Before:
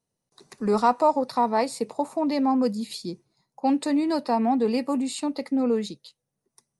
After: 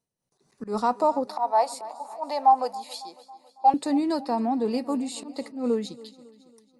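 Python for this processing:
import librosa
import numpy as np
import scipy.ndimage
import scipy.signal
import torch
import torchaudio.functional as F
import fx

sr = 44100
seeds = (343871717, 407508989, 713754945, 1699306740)

y = fx.dynamic_eq(x, sr, hz=2200.0, q=1.9, threshold_db=-44.0, ratio=4.0, max_db=-6)
y = fx.auto_swell(y, sr, attack_ms=134.0)
y = fx.highpass_res(y, sr, hz=760.0, q=4.9, at=(1.27, 3.74))
y = fx.echo_feedback(y, sr, ms=276, feedback_pct=59, wet_db=-19.5)
y = fx.am_noise(y, sr, seeds[0], hz=5.7, depth_pct=60)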